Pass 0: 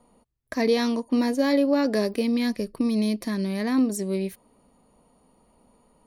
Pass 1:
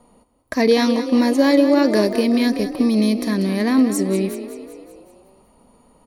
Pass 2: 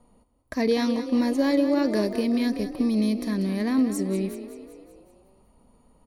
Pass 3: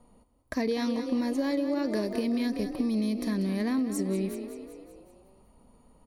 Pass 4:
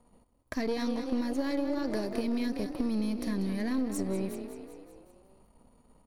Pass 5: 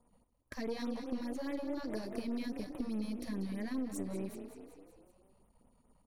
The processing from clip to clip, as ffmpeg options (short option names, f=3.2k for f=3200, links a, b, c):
-filter_complex "[0:a]asplit=7[a][b][c][d][e][f][g];[b]adelay=190,afreqshift=32,volume=-11dB[h];[c]adelay=380,afreqshift=64,volume=-15.9dB[i];[d]adelay=570,afreqshift=96,volume=-20.8dB[j];[e]adelay=760,afreqshift=128,volume=-25.6dB[k];[f]adelay=950,afreqshift=160,volume=-30.5dB[l];[g]adelay=1140,afreqshift=192,volume=-35.4dB[m];[a][h][i][j][k][l][m]amix=inputs=7:normalize=0,volume=6.5dB"
-af "lowshelf=f=140:g=10.5,volume=-9dB"
-af "acompressor=threshold=-25dB:ratio=6"
-af "aeval=exprs='if(lt(val(0),0),0.447*val(0),val(0))':c=same"
-af "afftfilt=real='re*(1-between(b*sr/1024,280*pow(5600/280,0.5+0.5*sin(2*PI*4.8*pts/sr))/1.41,280*pow(5600/280,0.5+0.5*sin(2*PI*4.8*pts/sr))*1.41))':imag='im*(1-between(b*sr/1024,280*pow(5600/280,0.5+0.5*sin(2*PI*4.8*pts/sr))/1.41,280*pow(5600/280,0.5+0.5*sin(2*PI*4.8*pts/sr))*1.41))':win_size=1024:overlap=0.75,volume=-6.5dB"